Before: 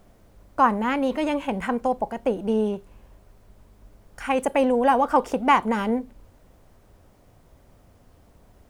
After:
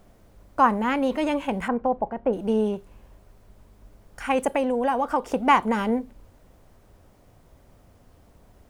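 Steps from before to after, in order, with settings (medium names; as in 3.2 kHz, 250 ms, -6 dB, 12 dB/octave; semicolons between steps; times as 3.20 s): 1.68–2.33 s: low-pass 1.6 kHz 12 dB/octave; 4.49–5.31 s: compression 2.5:1, threshold -22 dBFS, peak gain reduction 6 dB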